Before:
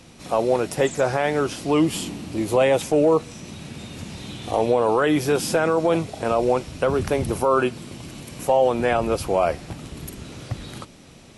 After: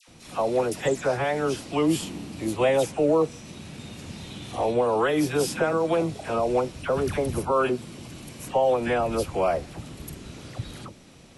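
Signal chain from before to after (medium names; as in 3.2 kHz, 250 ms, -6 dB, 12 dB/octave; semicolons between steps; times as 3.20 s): phase dispersion lows, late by 79 ms, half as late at 1.2 kHz; trim -3.5 dB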